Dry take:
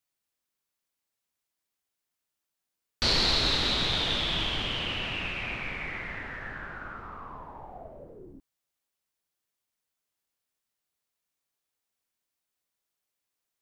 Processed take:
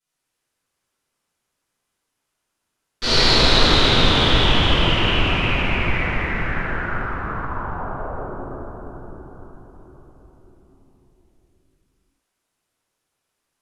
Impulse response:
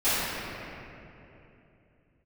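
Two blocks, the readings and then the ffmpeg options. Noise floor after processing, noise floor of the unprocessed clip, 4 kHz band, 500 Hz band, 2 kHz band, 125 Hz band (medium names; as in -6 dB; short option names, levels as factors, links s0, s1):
-78 dBFS, under -85 dBFS, +9.0 dB, +15.0 dB, +11.5 dB, +16.0 dB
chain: -filter_complex "[1:a]atrim=start_sample=2205,asetrate=25137,aresample=44100[s0];[0:a][s0]afir=irnorm=-1:irlink=0,volume=0.447"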